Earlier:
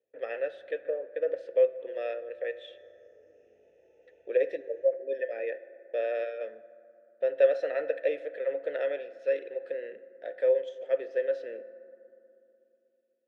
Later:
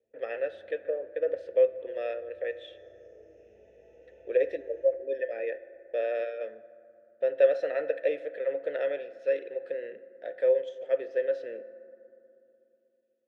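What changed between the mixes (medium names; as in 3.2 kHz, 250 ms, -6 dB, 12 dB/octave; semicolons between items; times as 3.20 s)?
background: send on; master: remove high-pass 210 Hz 6 dB/octave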